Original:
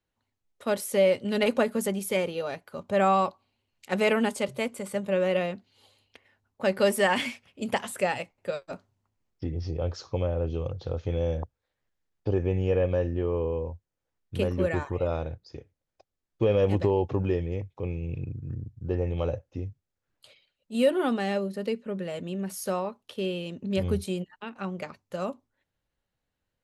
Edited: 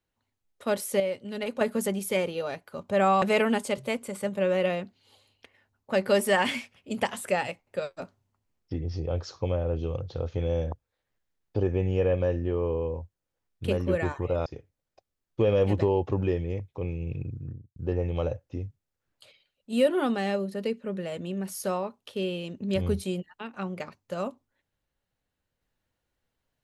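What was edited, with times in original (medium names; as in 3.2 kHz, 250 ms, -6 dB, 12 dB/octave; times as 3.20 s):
1.00–1.61 s: gain -8 dB
3.22–3.93 s: delete
15.17–15.48 s: delete
18.37–18.78 s: studio fade out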